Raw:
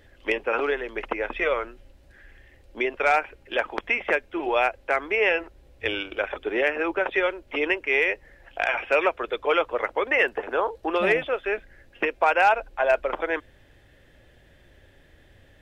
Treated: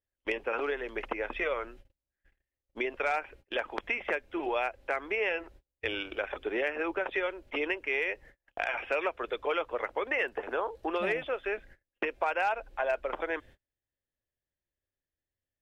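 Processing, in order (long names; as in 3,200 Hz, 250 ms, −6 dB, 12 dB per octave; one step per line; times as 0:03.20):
noise gate −45 dBFS, range −36 dB
downward compressor 2 to 1, threshold −27 dBFS, peak gain reduction 7.5 dB
level −3.5 dB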